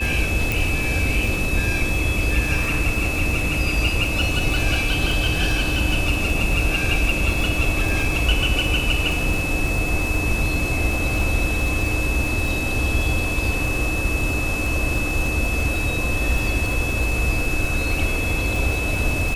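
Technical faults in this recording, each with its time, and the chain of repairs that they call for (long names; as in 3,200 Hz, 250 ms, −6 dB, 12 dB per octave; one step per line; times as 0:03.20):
surface crackle 34 per second −24 dBFS
whistle 2,600 Hz −25 dBFS
0:00.52: click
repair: click removal
notch filter 2,600 Hz, Q 30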